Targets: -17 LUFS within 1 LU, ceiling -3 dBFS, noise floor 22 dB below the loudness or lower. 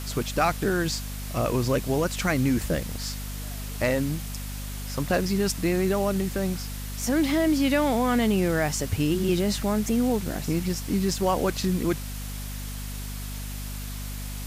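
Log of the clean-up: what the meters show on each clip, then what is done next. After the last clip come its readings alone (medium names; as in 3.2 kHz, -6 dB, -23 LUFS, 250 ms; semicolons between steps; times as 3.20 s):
hum 50 Hz; highest harmonic 250 Hz; hum level -32 dBFS; noise floor -34 dBFS; noise floor target -49 dBFS; loudness -26.5 LUFS; peak level -10.0 dBFS; loudness target -17.0 LUFS
-> hum notches 50/100/150/200/250 Hz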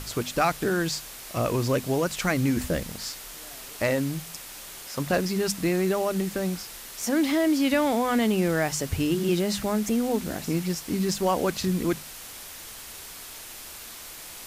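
hum not found; noise floor -42 dBFS; noise floor target -48 dBFS
-> noise reduction 6 dB, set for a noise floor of -42 dBFS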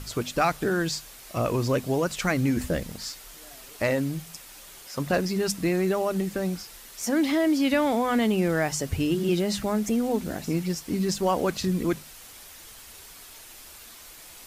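noise floor -47 dBFS; noise floor target -49 dBFS
-> noise reduction 6 dB, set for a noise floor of -47 dBFS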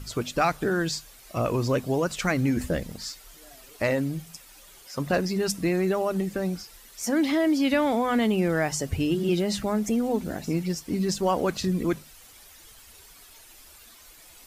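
noise floor -51 dBFS; loudness -26.5 LUFS; peak level -11.0 dBFS; loudness target -17.0 LUFS
-> trim +9.5 dB; peak limiter -3 dBFS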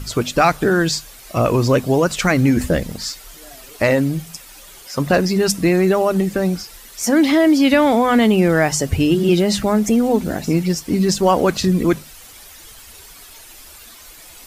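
loudness -17.0 LUFS; peak level -3.0 dBFS; noise floor -41 dBFS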